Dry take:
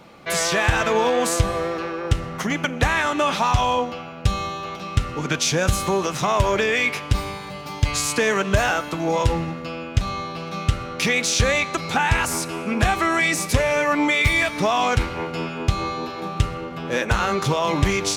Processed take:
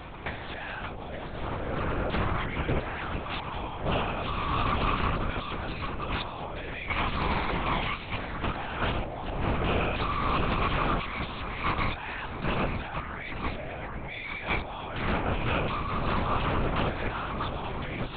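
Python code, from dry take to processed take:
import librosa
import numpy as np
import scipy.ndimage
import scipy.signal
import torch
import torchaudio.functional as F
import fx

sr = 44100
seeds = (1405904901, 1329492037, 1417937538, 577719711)

y = scipy.signal.sosfilt(scipy.signal.butter(2, 240.0, 'highpass', fs=sr, output='sos'), x)
y = fx.over_compress(y, sr, threshold_db=-32.0, ratio=-1.0)
y = y + 10.0 ** (-10.0 / 20.0) * np.pad(y, (int(875 * sr / 1000.0), 0))[:len(y)]
y = fx.lpc_vocoder(y, sr, seeds[0], excitation='whisper', order=8)
y = fx.doppler_dist(y, sr, depth_ms=0.24)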